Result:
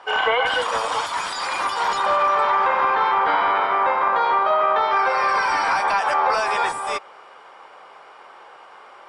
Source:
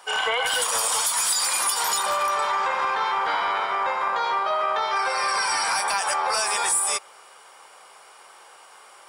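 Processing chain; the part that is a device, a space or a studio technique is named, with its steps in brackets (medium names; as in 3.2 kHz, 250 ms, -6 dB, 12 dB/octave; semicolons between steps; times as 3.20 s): phone in a pocket (low-pass 3.8 kHz 12 dB/octave; peaking EQ 280 Hz +5 dB 0.21 oct; treble shelf 2.4 kHz -9.5 dB); trim +7 dB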